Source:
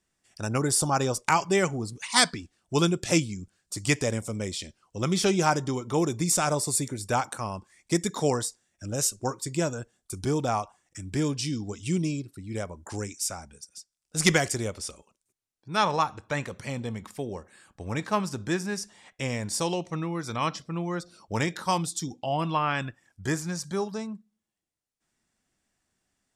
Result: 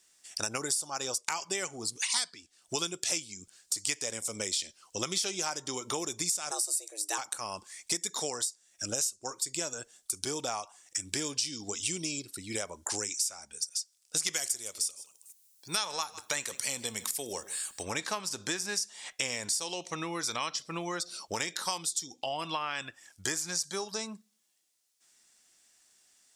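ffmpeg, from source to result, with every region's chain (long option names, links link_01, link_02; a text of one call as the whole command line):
ffmpeg -i in.wav -filter_complex "[0:a]asettb=1/sr,asplit=3[link_01][link_02][link_03];[link_01]atrim=end=6.514[link_04];[link_02]atrim=start=6.51:end=7.18,asetpts=PTS-STARTPTS,afade=type=in:duration=0.004:curve=qsin,afade=type=out:start_time=0.666:duration=0.004:curve=qsin,highshelf=frequency=5000:gain=8,afreqshift=210[link_05];[link_03]atrim=start=7.176[link_06];[link_04][link_05]acrossfade=duration=0.004:curve1=hsin:curve2=qsin[link_07];[link_07][link_06]acrossfade=duration=0.004:curve1=qsin:curve2=hsin,asettb=1/sr,asplit=3[link_08][link_09][link_10];[link_08]atrim=end=14.334[link_11];[link_09]atrim=start=14.33:end=17.83,asetpts=PTS-STARTPTS,afade=type=in:duration=0.004:curve=qsin,afade=type=out:start_time=3.496:duration=0.004:curve=qsin,aemphasis=mode=production:type=50fm,aecho=1:1:154:0.0841,atrim=end_sample=154350[link_12];[link_10]atrim=start=17.826[link_13];[link_11][link_12]acrossfade=duration=0.004:curve1=hsin:curve2=qsin[link_14];[link_14][link_13]acrossfade=duration=0.004:curve1=qsin:curve2=hsin,bass=frequency=250:gain=-13,treble=frequency=4000:gain=11,acompressor=threshold=-36dB:ratio=8,equalizer=frequency=3500:width=0.48:gain=6,volume=3dB" out.wav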